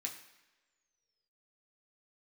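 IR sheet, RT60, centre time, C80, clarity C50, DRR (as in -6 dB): no single decay rate, 21 ms, 11.0 dB, 9.0 dB, -0.5 dB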